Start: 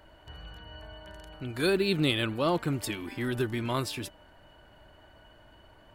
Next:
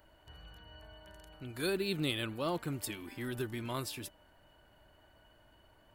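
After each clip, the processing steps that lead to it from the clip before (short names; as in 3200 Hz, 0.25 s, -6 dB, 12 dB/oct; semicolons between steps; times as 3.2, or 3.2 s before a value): high shelf 9000 Hz +11 dB; gain -8 dB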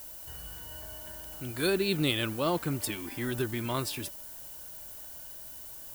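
added noise violet -51 dBFS; gain +6 dB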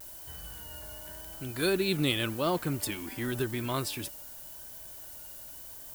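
vibrato 0.9 Hz 43 cents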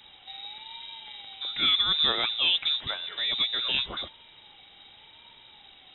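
treble ducked by the level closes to 2700 Hz, closed at -24 dBFS; inverted band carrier 3800 Hz; gain +4 dB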